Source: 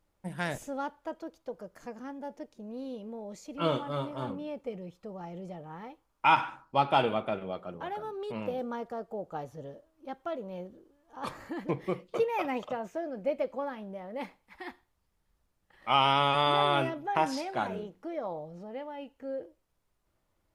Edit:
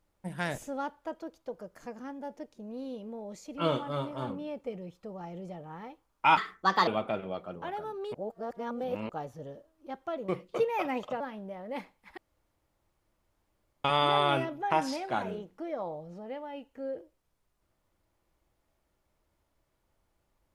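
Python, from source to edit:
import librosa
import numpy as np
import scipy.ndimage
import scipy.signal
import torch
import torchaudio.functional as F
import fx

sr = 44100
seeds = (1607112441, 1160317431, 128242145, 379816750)

y = fx.edit(x, sr, fx.speed_span(start_s=6.37, length_s=0.69, speed=1.37),
    fx.reverse_span(start_s=8.33, length_s=0.95),
    fx.cut(start_s=10.47, length_s=1.41),
    fx.cut(start_s=12.8, length_s=0.85),
    fx.room_tone_fill(start_s=14.62, length_s=1.67), tone=tone)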